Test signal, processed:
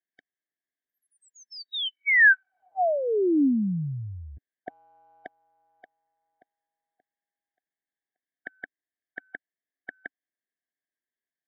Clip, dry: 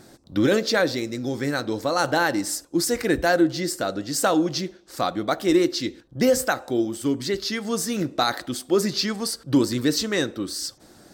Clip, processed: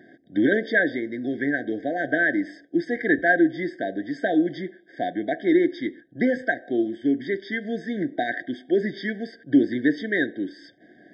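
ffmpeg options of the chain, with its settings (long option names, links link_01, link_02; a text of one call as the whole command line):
ffmpeg -i in.wav -af "highpass=220,equalizer=frequency=280:width_type=q:width=4:gain=4,equalizer=frequency=530:width_type=q:width=4:gain=-7,equalizer=frequency=970:width_type=q:width=4:gain=9,equalizer=frequency=1700:width_type=q:width=4:gain=8,equalizer=frequency=2800:width_type=q:width=4:gain=-5,lowpass=frequency=3000:width=0.5412,lowpass=frequency=3000:width=1.3066,afftfilt=real='re*eq(mod(floor(b*sr/1024/760),2),0)':imag='im*eq(mod(floor(b*sr/1024/760),2),0)':win_size=1024:overlap=0.75" out.wav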